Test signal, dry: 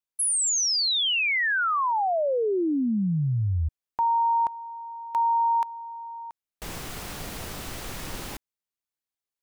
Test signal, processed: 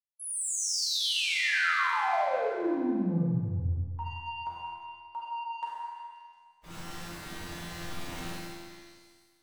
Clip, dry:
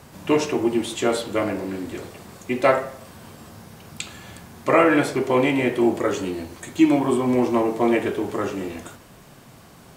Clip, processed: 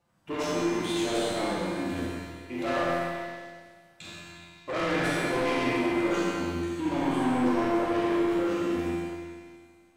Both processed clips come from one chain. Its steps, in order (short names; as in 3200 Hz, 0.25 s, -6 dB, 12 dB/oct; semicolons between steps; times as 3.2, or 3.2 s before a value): bin magnitudes rounded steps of 15 dB; gate -36 dBFS, range -20 dB; high shelf 5700 Hz -8 dB; notch 420 Hz, Q 14; transient shaper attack -5 dB, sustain +5 dB; in parallel at 0 dB: level quantiser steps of 12 dB; on the sum: flange 1.3 Hz, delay 5.7 ms, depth 1.2 ms, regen -38%; resonator 86 Hz, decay 0.76 s, harmonics all, mix 90%; soft clip -35.5 dBFS; delay with a stepping band-pass 0.177 s, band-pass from 1700 Hz, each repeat 0.7 oct, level -8 dB; Schroeder reverb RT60 1.7 s, combs from 32 ms, DRR -3.5 dB; gain +7 dB